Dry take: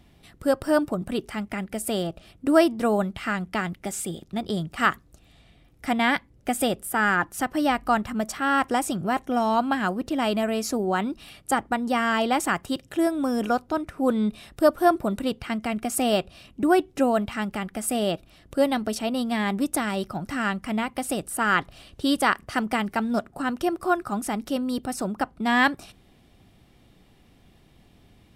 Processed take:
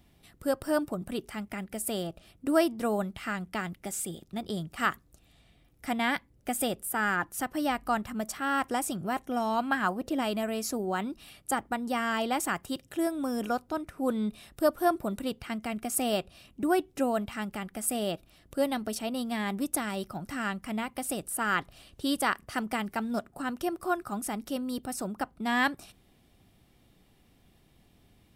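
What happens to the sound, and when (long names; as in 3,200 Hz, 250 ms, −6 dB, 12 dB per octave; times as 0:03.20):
0:09.58–0:10.21: parametric band 2,700 Hz → 350 Hz +8.5 dB
whole clip: high-shelf EQ 9,300 Hz +9.5 dB; level −6.5 dB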